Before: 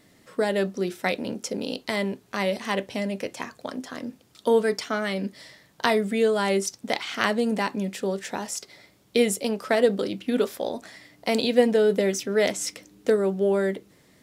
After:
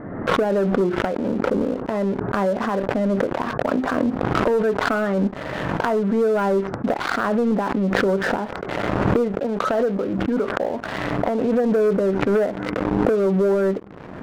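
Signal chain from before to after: recorder AGC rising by 32 dB/s; Chebyshev low-pass 1500 Hz, order 4; sample leveller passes 1; 9.28–11.64 bell 340 Hz -3 dB 2.1 oct; sample leveller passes 2; backwards sustainer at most 23 dB/s; gain -10 dB

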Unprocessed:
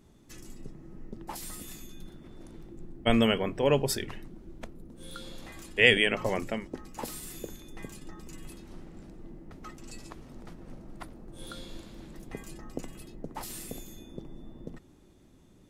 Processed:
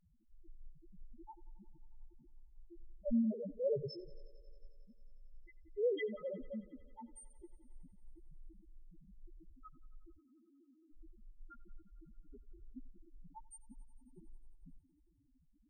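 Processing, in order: 10.17–10.93 vowel filter u; loudest bins only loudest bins 1; thinning echo 90 ms, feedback 81%, high-pass 160 Hz, level -22.5 dB; gain -1.5 dB

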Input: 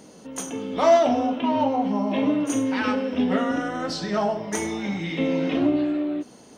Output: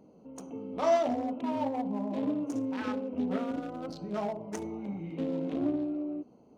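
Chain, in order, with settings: Wiener smoothing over 25 samples; gain -8.5 dB

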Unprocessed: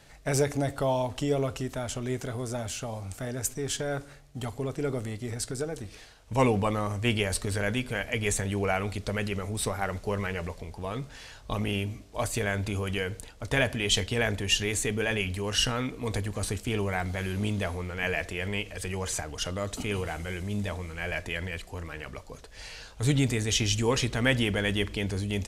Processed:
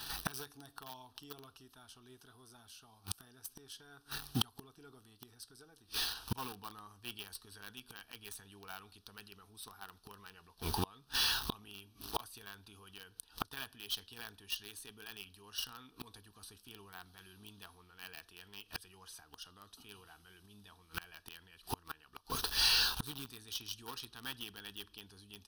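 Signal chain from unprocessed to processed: flipped gate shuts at -28 dBFS, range -29 dB; in parallel at -6 dB: requantised 8-bit, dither none; on the sum: tone controls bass -13 dB, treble +9 dB; fixed phaser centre 2100 Hz, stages 6; gain +11 dB

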